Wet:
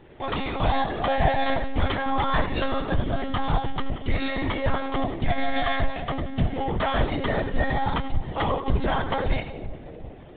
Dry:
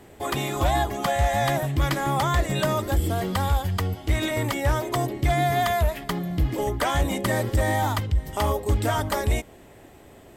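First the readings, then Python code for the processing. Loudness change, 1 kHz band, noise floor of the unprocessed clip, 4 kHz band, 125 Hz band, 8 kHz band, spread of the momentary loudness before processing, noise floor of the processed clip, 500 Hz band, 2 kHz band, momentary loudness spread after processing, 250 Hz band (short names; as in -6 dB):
-2.0 dB, -0.5 dB, -49 dBFS, -1.5 dB, -4.5 dB, under -40 dB, 5 LU, -41 dBFS, -2.0 dB, 0.0 dB, 6 LU, 0.0 dB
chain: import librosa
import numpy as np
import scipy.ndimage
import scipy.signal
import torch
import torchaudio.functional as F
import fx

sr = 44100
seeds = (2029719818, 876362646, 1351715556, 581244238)

y = fx.doubler(x, sr, ms=20.0, db=-10.5)
y = fx.echo_split(y, sr, split_hz=650.0, low_ms=369, high_ms=89, feedback_pct=52, wet_db=-10.0)
y = fx.lpc_monotone(y, sr, seeds[0], pitch_hz=270.0, order=16)
y = y * librosa.db_to_amplitude(-1.0)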